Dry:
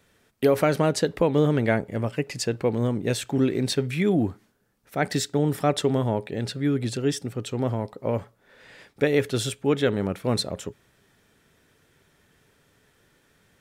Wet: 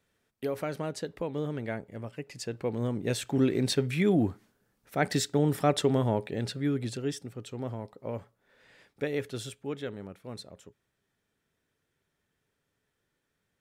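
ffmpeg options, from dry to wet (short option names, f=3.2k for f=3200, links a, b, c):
-af "volume=-2.5dB,afade=t=in:st=2.26:d=1.25:silence=0.316228,afade=t=out:st=6.21:d=1.08:silence=0.421697,afade=t=out:st=9.13:d=1.06:silence=0.421697"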